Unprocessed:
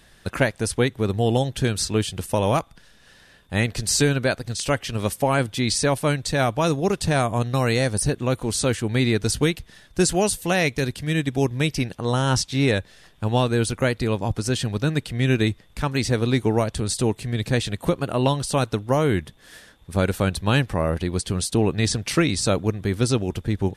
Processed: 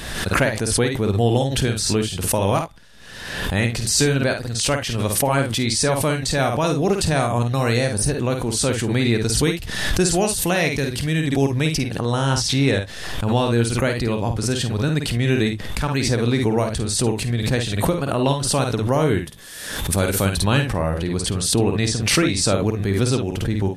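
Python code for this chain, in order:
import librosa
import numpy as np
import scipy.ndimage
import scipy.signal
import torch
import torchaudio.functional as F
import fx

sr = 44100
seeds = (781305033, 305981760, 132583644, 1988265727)

y = fx.high_shelf(x, sr, hz=5500.0, db=11.5, at=(19.19, 20.32))
y = fx.room_early_taps(y, sr, ms=(51, 69), db=(-6.0, -16.5))
y = fx.pre_swell(y, sr, db_per_s=44.0)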